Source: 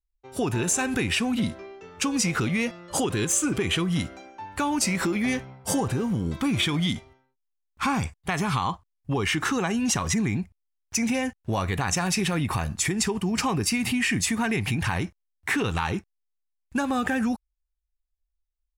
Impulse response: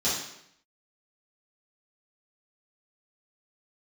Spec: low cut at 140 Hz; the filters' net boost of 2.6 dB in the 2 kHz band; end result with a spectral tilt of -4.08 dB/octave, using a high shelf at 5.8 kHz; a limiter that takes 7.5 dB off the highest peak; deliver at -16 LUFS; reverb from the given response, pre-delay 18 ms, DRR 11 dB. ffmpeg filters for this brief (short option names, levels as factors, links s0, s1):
-filter_complex "[0:a]highpass=140,equalizer=f=2000:t=o:g=4,highshelf=f=5800:g=-6.5,alimiter=limit=0.133:level=0:latency=1,asplit=2[s0][s1];[1:a]atrim=start_sample=2205,adelay=18[s2];[s1][s2]afir=irnorm=-1:irlink=0,volume=0.0841[s3];[s0][s3]amix=inputs=2:normalize=0,volume=3.55"